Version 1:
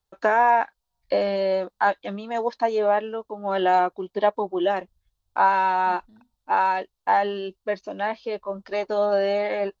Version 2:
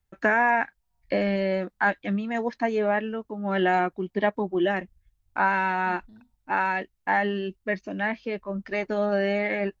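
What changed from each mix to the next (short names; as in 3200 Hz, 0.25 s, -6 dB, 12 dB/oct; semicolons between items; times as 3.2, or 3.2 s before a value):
first voice: add graphic EQ 125/250/500/1000/2000/4000 Hz +6/+4/-5/-7/+9/-8 dB; master: add low shelf 170 Hz +7.5 dB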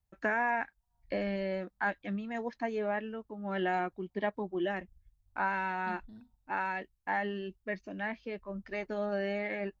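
first voice -9.0 dB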